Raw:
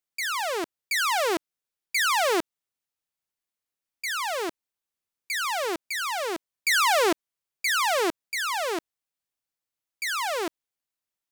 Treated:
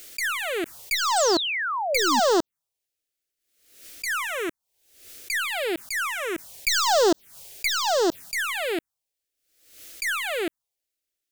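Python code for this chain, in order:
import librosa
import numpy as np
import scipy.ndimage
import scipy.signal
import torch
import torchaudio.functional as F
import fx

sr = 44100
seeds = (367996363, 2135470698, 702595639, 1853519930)

y = fx.tracing_dist(x, sr, depth_ms=0.026)
y = fx.peak_eq(y, sr, hz=1100.0, db=-6.5, octaves=0.54, at=(6.34, 8.49))
y = fx.env_phaser(y, sr, low_hz=160.0, high_hz=2300.0, full_db=-22.0)
y = fx.spec_paint(y, sr, seeds[0], shape='fall', start_s=1.16, length_s=1.04, low_hz=220.0, high_hz=8700.0, level_db=-32.0)
y = fx.pre_swell(y, sr, db_per_s=80.0)
y = y * librosa.db_to_amplitude(5.0)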